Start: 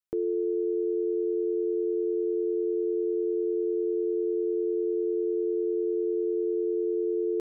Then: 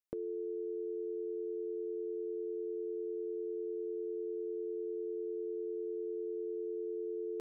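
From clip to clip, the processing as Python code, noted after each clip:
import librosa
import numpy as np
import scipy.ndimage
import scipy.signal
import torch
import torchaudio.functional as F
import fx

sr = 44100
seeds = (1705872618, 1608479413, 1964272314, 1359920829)

y = fx.dynamic_eq(x, sr, hz=360.0, q=1.8, threshold_db=-42.0, ratio=4.0, max_db=-8)
y = F.gain(torch.from_numpy(y), -5.0).numpy()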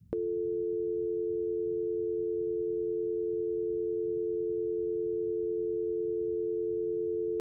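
y = fx.dmg_noise_band(x, sr, seeds[0], low_hz=49.0, high_hz=180.0, level_db=-63.0)
y = F.gain(torch.from_numpy(y), 7.0).numpy()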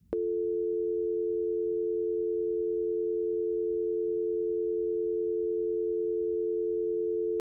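y = fx.peak_eq(x, sr, hz=120.0, db=-14.5, octaves=0.94)
y = F.gain(torch.from_numpy(y), 3.0).numpy()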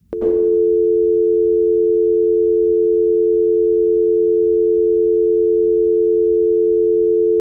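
y = fx.rev_plate(x, sr, seeds[1], rt60_s=1.0, hf_ratio=0.8, predelay_ms=80, drr_db=-7.0)
y = F.gain(torch.from_numpy(y), 7.0).numpy()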